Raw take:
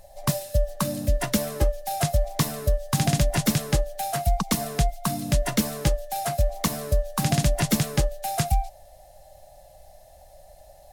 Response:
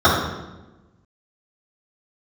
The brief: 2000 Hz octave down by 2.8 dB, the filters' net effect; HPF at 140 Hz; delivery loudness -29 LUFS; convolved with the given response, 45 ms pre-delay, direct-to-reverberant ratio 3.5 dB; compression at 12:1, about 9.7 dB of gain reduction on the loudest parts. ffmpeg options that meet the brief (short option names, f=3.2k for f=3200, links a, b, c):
-filter_complex "[0:a]highpass=140,equalizer=f=2k:t=o:g=-3.5,acompressor=threshold=-28dB:ratio=12,asplit=2[a][b];[1:a]atrim=start_sample=2205,adelay=45[c];[b][c]afir=irnorm=-1:irlink=0,volume=-29.5dB[d];[a][d]amix=inputs=2:normalize=0,volume=2.5dB"